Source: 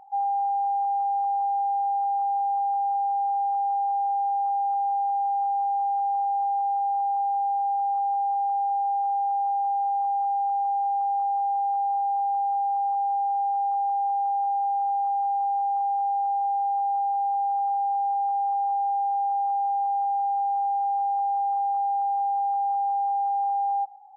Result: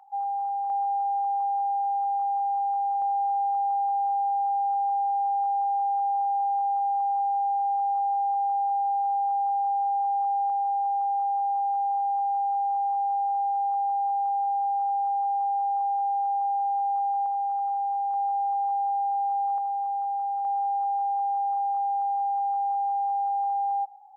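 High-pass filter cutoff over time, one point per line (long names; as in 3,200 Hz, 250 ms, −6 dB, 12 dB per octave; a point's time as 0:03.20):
high-pass filter 24 dB per octave
830 Hz
from 0:00.70 700 Hz
from 0:03.02 600 Hz
from 0:10.50 670 Hz
from 0:17.26 770 Hz
from 0:18.14 690 Hz
from 0:19.58 820 Hz
from 0:20.45 710 Hz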